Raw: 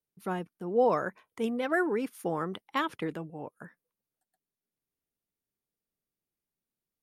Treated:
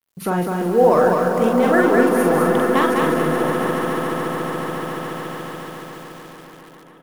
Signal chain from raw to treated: G.711 law mismatch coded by mu; doubler 45 ms -3 dB; on a send: swelling echo 0.142 s, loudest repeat 5, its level -11.5 dB; on the sum: dynamic EQ 3200 Hz, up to -5 dB, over -49 dBFS, Q 1; in parallel at -0.5 dB: compressor, threshold -37 dBFS, peak gain reduction 18 dB; on the sum: lo-fi delay 0.203 s, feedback 35%, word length 8-bit, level -3 dB; gain +7 dB

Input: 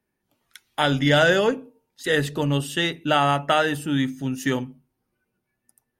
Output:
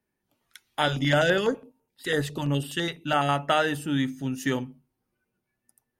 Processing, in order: 0.88–3.29 stepped notch 12 Hz 280–6300 Hz; gain -3 dB

